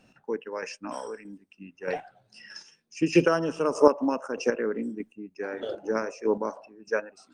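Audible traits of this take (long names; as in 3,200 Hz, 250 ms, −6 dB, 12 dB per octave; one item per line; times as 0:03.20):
chopped level 1.6 Hz, depth 60%, duty 20%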